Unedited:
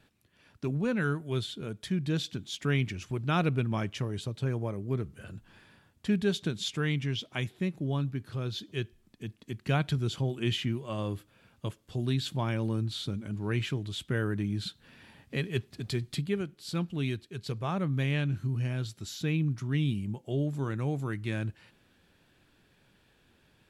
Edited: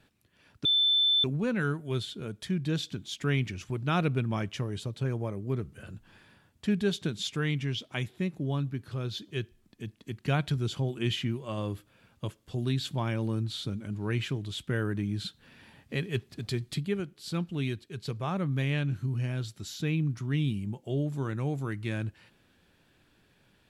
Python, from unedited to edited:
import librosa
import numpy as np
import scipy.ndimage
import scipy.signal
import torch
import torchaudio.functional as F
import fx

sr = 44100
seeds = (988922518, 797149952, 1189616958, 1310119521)

y = fx.edit(x, sr, fx.insert_tone(at_s=0.65, length_s=0.59, hz=3530.0, db=-21.0), tone=tone)